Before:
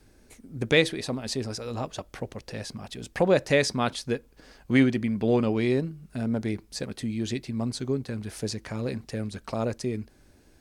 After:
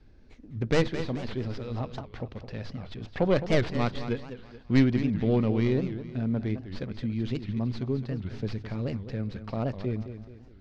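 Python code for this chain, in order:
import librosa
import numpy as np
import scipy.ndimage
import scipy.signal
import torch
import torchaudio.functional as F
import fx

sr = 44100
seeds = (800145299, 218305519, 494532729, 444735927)

y = fx.tracing_dist(x, sr, depth_ms=0.31)
y = scipy.signal.sosfilt(scipy.signal.butter(4, 4700.0, 'lowpass', fs=sr, output='sos'), y)
y = fx.low_shelf(y, sr, hz=160.0, db=11.5)
y = fx.hum_notches(y, sr, base_hz=50, count=3)
y = fx.echo_feedback(y, sr, ms=214, feedback_pct=41, wet_db=-11.0)
y = fx.record_warp(y, sr, rpm=78.0, depth_cents=250.0)
y = y * 10.0 ** (-5.0 / 20.0)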